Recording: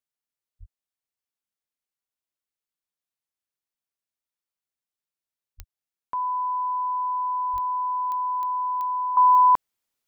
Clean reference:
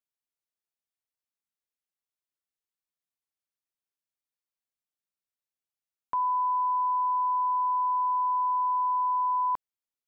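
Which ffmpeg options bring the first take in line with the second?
-filter_complex "[0:a]adeclick=t=4,asplit=3[a][b][c];[a]afade=t=out:st=0.59:d=0.02[d];[b]highpass=f=140:w=0.5412,highpass=f=140:w=1.3066,afade=t=in:st=0.59:d=0.02,afade=t=out:st=0.71:d=0.02[e];[c]afade=t=in:st=0.71:d=0.02[f];[d][e][f]amix=inputs=3:normalize=0,asplit=3[g][h][i];[g]afade=t=out:st=5.57:d=0.02[j];[h]highpass=f=140:w=0.5412,highpass=f=140:w=1.3066,afade=t=in:st=5.57:d=0.02,afade=t=out:st=5.69:d=0.02[k];[i]afade=t=in:st=5.69:d=0.02[l];[j][k][l]amix=inputs=3:normalize=0,asplit=3[m][n][o];[m]afade=t=out:st=7.52:d=0.02[p];[n]highpass=f=140:w=0.5412,highpass=f=140:w=1.3066,afade=t=in:st=7.52:d=0.02,afade=t=out:st=7.64:d=0.02[q];[o]afade=t=in:st=7.64:d=0.02[r];[p][q][r]amix=inputs=3:normalize=0,asetnsamples=n=441:p=0,asendcmd='9.17 volume volume -11dB',volume=0dB"

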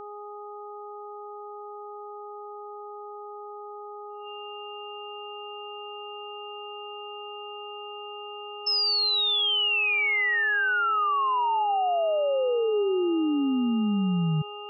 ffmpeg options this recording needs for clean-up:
-af "bandreject=f=414.3:t=h:w=4,bandreject=f=828.6:t=h:w=4,bandreject=f=1.2429k:t=h:w=4,bandreject=f=2.8k:w=30"

